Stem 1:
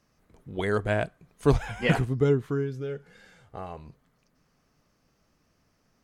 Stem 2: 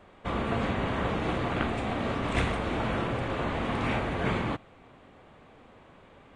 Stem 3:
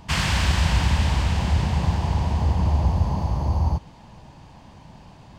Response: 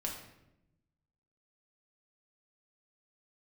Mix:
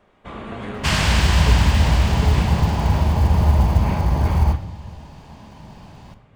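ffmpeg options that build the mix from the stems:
-filter_complex "[0:a]volume=-10dB[a];[1:a]volume=-7.5dB,asplit=2[b][c];[c]volume=-3.5dB[d];[2:a]acrusher=bits=8:mode=log:mix=0:aa=0.000001,adelay=750,volume=0.5dB,asplit=2[e][f];[f]volume=-5.5dB[g];[3:a]atrim=start_sample=2205[h];[d][g]amix=inputs=2:normalize=0[i];[i][h]afir=irnorm=-1:irlink=0[j];[a][b][e][j]amix=inputs=4:normalize=0"

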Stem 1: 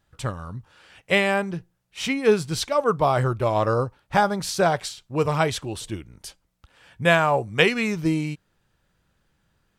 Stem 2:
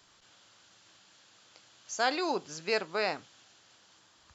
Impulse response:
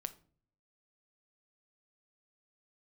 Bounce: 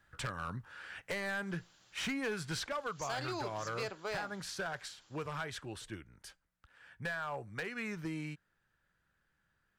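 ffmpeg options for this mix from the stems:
-filter_complex "[0:a]equalizer=f=1.6k:w=1.7:g=12,acompressor=threshold=-20dB:ratio=3,volume=-4dB,afade=t=out:st=2.43:d=0.5:silence=0.334965[a];[1:a]adelay=1100,volume=-5.5dB[b];[a][b]amix=inputs=2:normalize=0,acrossover=split=140|1400|7500[c][d][e][f];[c]acompressor=threshold=-49dB:ratio=4[g];[d]acompressor=threshold=-36dB:ratio=4[h];[e]acompressor=threshold=-39dB:ratio=4[i];[f]acompressor=threshold=-54dB:ratio=4[j];[g][h][i][j]amix=inputs=4:normalize=0,asoftclip=type=hard:threshold=-32dB"

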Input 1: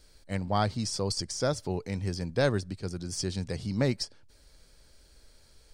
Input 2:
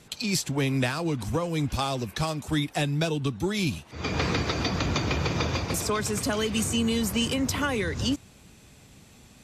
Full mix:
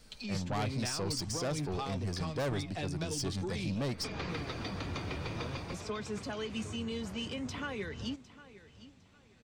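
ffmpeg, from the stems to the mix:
-filter_complex "[0:a]asoftclip=type=tanh:threshold=-28dB,volume=-0.5dB[a];[1:a]flanger=delay=4.4:depth=6.6:regen=64:speed=0.5:shape=sinusoidal,lowpass=4.9k,volume=-6.5dB,asplit=2[b][c];[c]volume=-17.5dB,aecho=0:1:756|1512|2268|3024:1|0.26|0.0676|0.0176[d];[a][b][d]amix=inputs=3:normalize=0,asoftclip=type=tanh:threshold=-26.5dB"

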